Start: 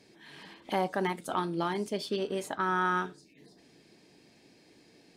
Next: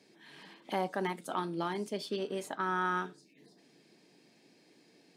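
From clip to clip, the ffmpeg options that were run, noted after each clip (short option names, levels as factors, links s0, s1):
-af "highpass=f=140:w=0.5412,highpass=f=140:w=1.3066,volume=0.668"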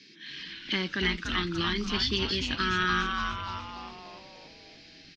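-filter_complex "[0:a]firequalizer=gain_entry='entry(300,0);entry(700,-26);entry(1100,-7);entry(1700,4);entry(3100,10);entry(5800,7);entry(9300,-29)':delay=0.05:min_phase=1,asplit=8[s0][s1][s2][s3][s4][s5][s6][s7];[s1]adelay=291,afreqshift=-140,volume=0.631[s8];[s2]adelay=582,afreqshift=-280,volume=0.339[s9];[s3]adelay=873,afreqshift=-420,volume=0.184[s10];[s4]adelay=1164,afreqshift=-560,volume=0.0989[s11];[s5]adelay=1455,afreqshift=-700,volume=0.0537[s12];[s6]adelay=1746,afreqshift=-840,volume=0.0288[s13];[s7]adelay=2037,afreqshift=-980,volume=0.0157[s14];[s0][s8][s9][s10][s11][s12][s13][s14]amix=inputs=8:normalize=0,volume=2.11"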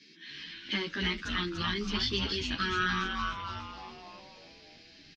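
-filter_complex "[0:a]asplit=2[s0][s1];[s1]adelay=11.4,afreqshift=2.6[s2];[s0][s2]amix=inputs=2:normalize=1"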